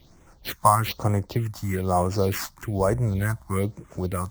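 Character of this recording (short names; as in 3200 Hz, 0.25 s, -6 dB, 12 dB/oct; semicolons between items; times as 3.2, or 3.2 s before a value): aliases and images of a low sample rate 10000 Hz, jitter 0%; phasing stages 4, 1.1 Hz, lowest notch 410–4100 Hz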